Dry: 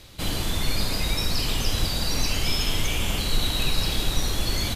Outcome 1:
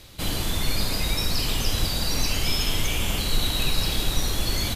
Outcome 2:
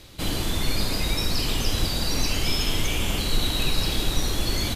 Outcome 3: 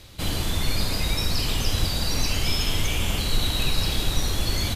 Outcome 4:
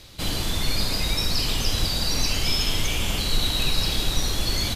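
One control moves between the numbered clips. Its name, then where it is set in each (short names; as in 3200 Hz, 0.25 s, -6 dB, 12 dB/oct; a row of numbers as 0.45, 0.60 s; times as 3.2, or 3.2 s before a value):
bell, frequency: 15000, 320, 86, 4800 Hz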